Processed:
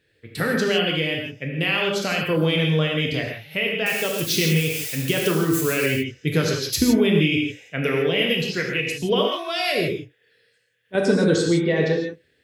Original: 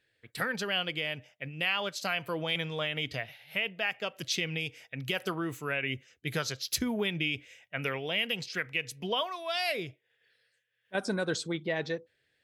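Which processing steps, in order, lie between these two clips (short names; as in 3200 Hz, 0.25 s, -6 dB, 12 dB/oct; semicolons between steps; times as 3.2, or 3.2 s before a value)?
3.86–5.86 switching spikes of -29 dBFS; resonant low shelf 540 Hz +6.5 dB, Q 1.5; non-linear reverb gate 0.19 s flat, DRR -0.5 dB; gain +5 dB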